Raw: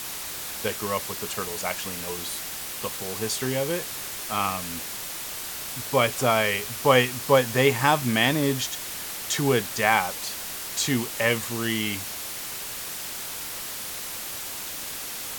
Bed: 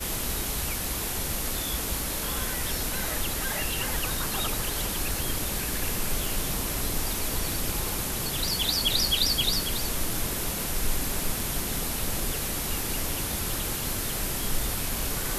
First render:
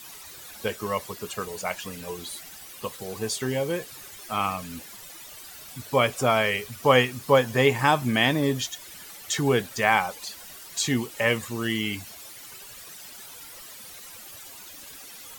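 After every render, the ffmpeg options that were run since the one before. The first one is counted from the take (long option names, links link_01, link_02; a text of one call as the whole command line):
ffmpeg -i in.wav -af "afftdn=noise_reduction=13:noise_floor=-35" out.wav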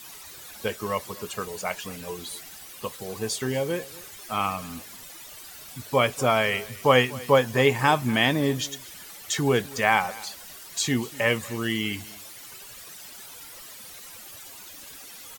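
ffmpeg -i in.wav -af "aecho=1:1:243:0.0891" out.wav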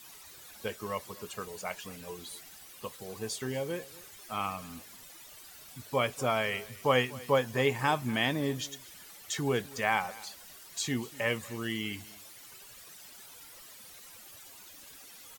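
ffmpeg -i in.wav -af "volume=-7.5dB" out.wav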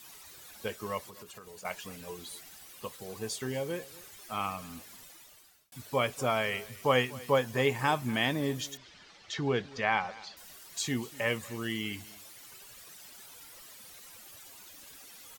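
ffmpeg -i in.wav -filter_complex "[0:a]asettb=1/sr,asplit=3[link_01][link_02][link_03];[link_01]atrim=end=0.994[link_04];[link_02]atrim=start=0.99:end=1.65,asetpts=PTS-STARTPTS,afade=type=in:duration=0.004:curve=qsin,afade=type=out:start_time=0.656:duration=0.004:curve=qsin,acompressor=threshold=-44dB:ratio=16:attack=3.2:release=140:knee=1:detection=peak[link_05];[link_03]atrim=start=1.646[link_06];[link_04][link_05]acrossfade=duration=0.004:curve1=hsin:curve2=qsin[link_07];[link_07][link_06]acrossfade=duration=0.004:curve1=qsin:curve2=hsin,asettb=1/sr,asplit=3[link_08][link_09][link_10];[link_08]atrim=end=8.774[link_11];[link_09]atrim=start=8.77:end=10.37,asetpts=PTS-STARTPTS,afade=type=in:duration=0.004:curve=qsin,afade=type=out:start_time=1.596:duration=0.004:curve=qsin,lowpass=frequency=5200:width=0.5412,lowpass=frequency=5200:width=1.3066[link_12];[link_10]atrim=start=10.366[link_13];[link_11][link_12]acrossfade=duration=0.004:curve1=hsin:curve2=qsin[link_14];[link_14][link_13]acrossfade=duration=0.004:curve1=qsin:curve2=hsin,asplit=2[link_15][link_16];[link_15]atrim=end=5.72,asetpts=PTS-STARTPTS,afade=type=out:start_time=4.99:duration=0.73[link_17];[link_16]atrim=start=5.72,asetpts=PTS-STARTPTS,afade=type=in:duration=0.004:curve=hsin[link_18];[link_17][link_18]concat=n=2:v=0:a=1" out.wav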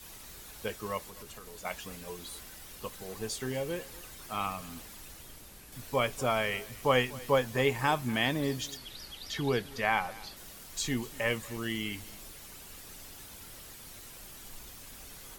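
ffmpeg -i in.wav -i bed.wav -filter_complex "[1:a]volume=-22dB[link_01];[0:a][link_01]amix=inputs=2:normalize=0" out.wav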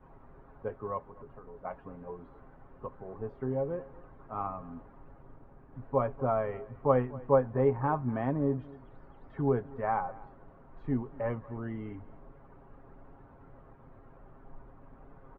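ffmpeg -i in.wav -af "lowpass=frequency=1200:width=0.5412,lowpass=frequency=1200:width=1.3066,aecho=1:1:7.4:0.44" out.wav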